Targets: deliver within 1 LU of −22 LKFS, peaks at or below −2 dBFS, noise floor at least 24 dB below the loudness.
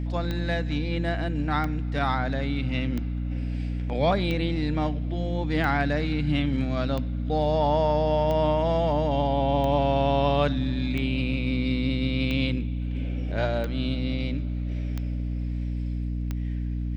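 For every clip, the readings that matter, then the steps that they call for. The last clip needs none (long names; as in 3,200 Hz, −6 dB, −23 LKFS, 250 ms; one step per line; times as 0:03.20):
number of clicks 13; mains hum 60 Hz; hum harmonics up to 300 Hz; level of the hum −26 dBFS; integrated loudness −26.5 LKFS; sample peak −9.5 dBFS; target loudness −22.0 LKFS
→ click removal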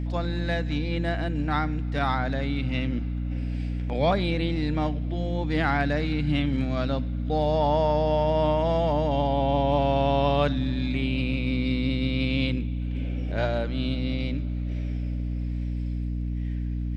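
number of clicks 0; mains hum 60 Hz; hum harmonics up to 300 Hz; level of the hum −26 dBFS
→ hum removal 60 Hz, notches 5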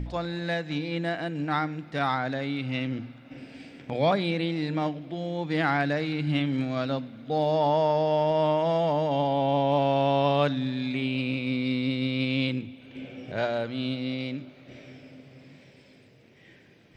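mains hum none found; integrated loudness −27.0 LKFS; sample peak −10.5 dBFS; target loudness −22.0 LKFS
→ level +5 dB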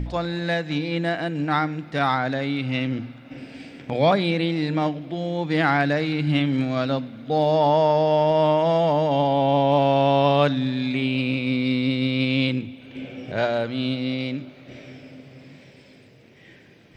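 integrated loudness −22.0 LKFS; sample peak −5.5 dBFS; background noise floor −50 dBFS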